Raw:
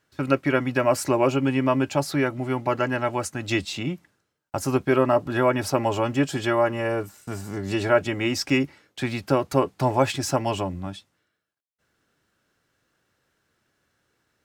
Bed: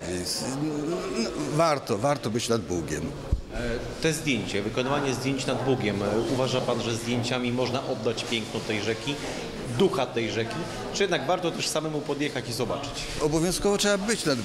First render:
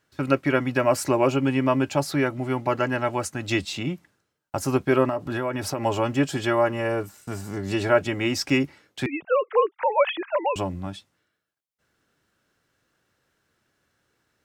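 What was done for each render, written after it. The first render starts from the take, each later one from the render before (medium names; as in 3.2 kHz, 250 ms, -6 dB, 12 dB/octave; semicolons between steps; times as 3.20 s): 5.09–5.85 s: compression 4:1, threshold -23 dBFS; 9.06–10.56 s: formants replaced by sine waves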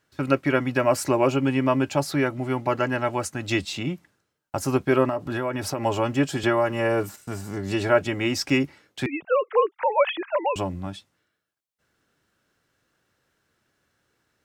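6.43–7.16 s: three bands compressed up and down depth 100%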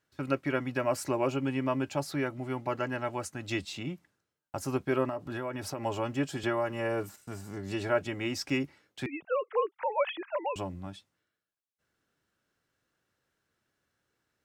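trim -8.5 dB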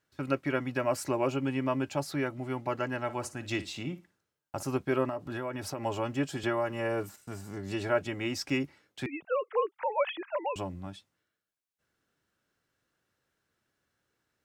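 3.03–4.63 s: flutter echo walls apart 9.8 m, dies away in 0.24 s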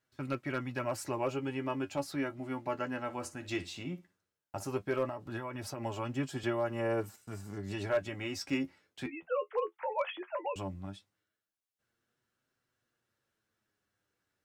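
flange 0.16 Hz, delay 7.8 ms, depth 4.4 ms, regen +41%; hard clipper -22.5 dBFS, distortion -26 dB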